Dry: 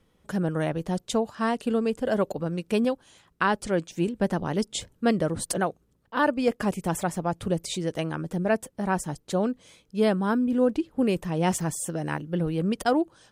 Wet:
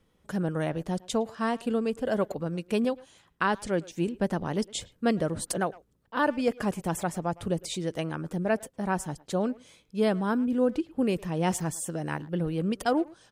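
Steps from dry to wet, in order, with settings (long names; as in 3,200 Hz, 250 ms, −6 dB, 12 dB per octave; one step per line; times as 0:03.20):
far-end echo of a speakerphone 110 ms, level −20 dB
level −2.5 dB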